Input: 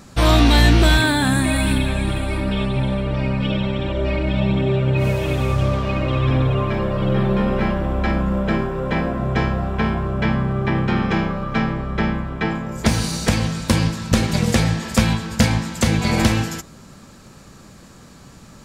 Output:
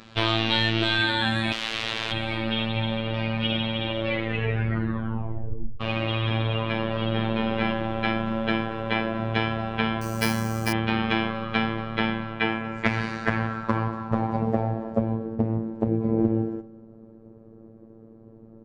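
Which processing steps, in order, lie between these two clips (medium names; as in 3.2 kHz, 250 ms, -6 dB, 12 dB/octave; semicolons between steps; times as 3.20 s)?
bass shelf 190 Hz -6 dB; compression, threshold -17 dBFS, peak gain reduction 5.5 dB; 1.52–2.12 s: integer overflow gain 23 dB; 3.99 s: tape stop 1.82 s; low-pass sweep 3.3 kHz -> 420 Hz, 12.26–15.43 s; robot voice 112 Hz; delay 236 ms -21.5 dB; 10.01–10.73 s: careless resampling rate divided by 6×, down filtered, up hold; 15.25–15.87 s: loudspeaker Doppler distortion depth 0.4 ms; trim -1 dB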